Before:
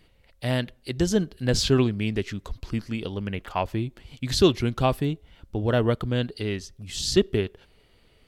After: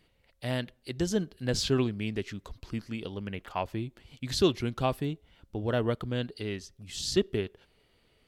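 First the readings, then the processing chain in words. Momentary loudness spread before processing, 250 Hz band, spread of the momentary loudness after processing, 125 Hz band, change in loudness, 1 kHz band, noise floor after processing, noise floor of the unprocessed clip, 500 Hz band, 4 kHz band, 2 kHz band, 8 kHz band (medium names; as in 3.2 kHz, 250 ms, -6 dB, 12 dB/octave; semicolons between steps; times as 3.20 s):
13 LU, -6.0 dB, 13 LU, -7.0 dB, -6.0 dB, -5.5 dB, -68 dBFS, -60 dBFS, -5.5 dB, -5.5 dB, -5.5 dB, -5.5 dB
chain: bass shelf 69 Hz -7 dB; trim -5.5 dB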